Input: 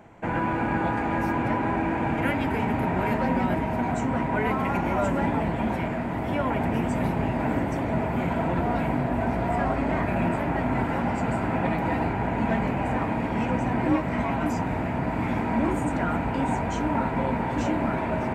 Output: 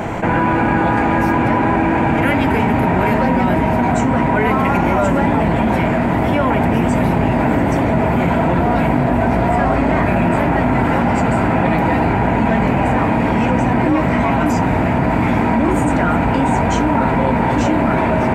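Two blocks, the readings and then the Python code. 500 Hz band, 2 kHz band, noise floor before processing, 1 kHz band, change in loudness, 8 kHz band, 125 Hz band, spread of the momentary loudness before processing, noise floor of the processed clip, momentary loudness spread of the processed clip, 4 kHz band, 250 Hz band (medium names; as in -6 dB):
+10.5 dB, +10.5 dB, -29 dBFS, +10.5 dB, +10.5 dB, no reading, +10.5 dB, 2 LU, -16 dBFS, 1 LU, +11.0 dB, +10.5 dB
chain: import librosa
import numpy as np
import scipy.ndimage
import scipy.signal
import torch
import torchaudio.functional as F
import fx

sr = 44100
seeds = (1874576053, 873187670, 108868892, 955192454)

y = fx.env_flatten(x, sr, amount_pct=70)
y = y * librosa.db_to_amplitude(6.0)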